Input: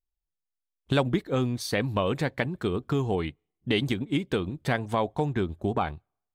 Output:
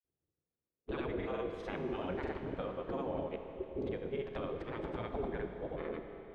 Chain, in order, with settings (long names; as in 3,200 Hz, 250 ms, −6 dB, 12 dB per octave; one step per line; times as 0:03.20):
gate on every frequency bin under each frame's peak −15 dB weak
low-pass filter 1,400 Hz 12 dB per octave
low shelf with overshoot 630 Hz +10 dB, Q 1.5
brickwall limiter −32.5 dBFS, peak gain reduction 15 dB
granular cloud, pitch spread up and down by 0 semitones
four-comb reverb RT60 3.7 s, combs from 26 ms, DRR 5.5 dB
level +3.5 dB